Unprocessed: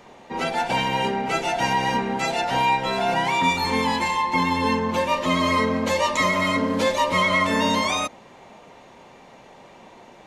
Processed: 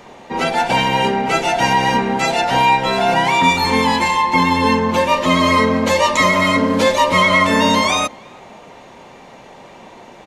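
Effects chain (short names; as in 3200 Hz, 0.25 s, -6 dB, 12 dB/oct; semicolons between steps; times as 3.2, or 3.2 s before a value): speakerphone echo 0.33 s, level -27 dB; gain +7 dB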